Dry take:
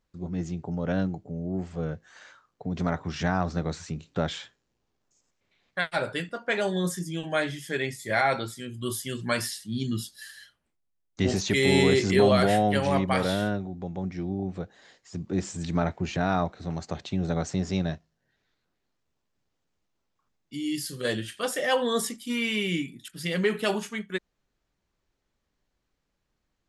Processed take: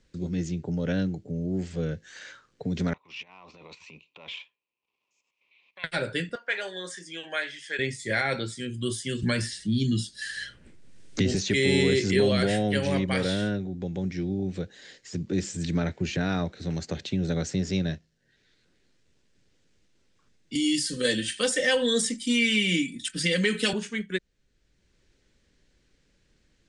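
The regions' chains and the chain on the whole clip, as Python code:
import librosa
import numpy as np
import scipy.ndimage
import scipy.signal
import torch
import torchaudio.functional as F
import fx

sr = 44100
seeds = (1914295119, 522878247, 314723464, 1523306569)

y = fx.chain(x, sr, fx.over_compress(threshold_db=-32.0, ratio=-1.0),
    fx.transient(attack_db=-6, sustain_db=-11),
    fx.double_bandpass(hz=1600.0, octaves=1.3), at=(2.93, 5.84))
y = fx.chain(y, sr, fx.highpass(hz=840.0, slope=12),
    fx.high_shelf(hz=5000.0, db=-11.5), at=(6.35, 7.79))
y = fx.chain(y, sr, fx.low_shelf(hz=230.0, db=7.5),
    fx.band_squash(depth_pct=70), at=(9.22, 11.35))
y = fx.chain(y, sr, fx.high_shelf(hz=3600.0, db=10.5),
    fx.comb(ms=3.9, depth=0.58),
    fx.band_squash(depth_pct=40), at=(20.55, 23.73))
y = scipy.signal.sosfilt(scipy.signal.ellip(4, 1.0, 40, 9200.0, 'lowpass', fs=sr, output='sos'), y)
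y = fx.band_shelf(y, sr, hz=910.0, db=-9.5, octaves=1.2)
y = fx.band_squash(y, sr, depth_pct=40)
y = y * librosa.db_to_amplitude(1.5)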